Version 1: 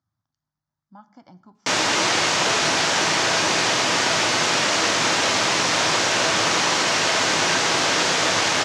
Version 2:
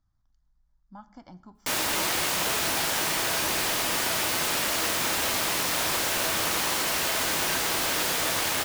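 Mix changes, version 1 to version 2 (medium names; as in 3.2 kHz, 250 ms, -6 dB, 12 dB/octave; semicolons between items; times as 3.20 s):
background -8.5 dB; master: remove elliptic band-pass 110–6500 Hz, stop band 60 dB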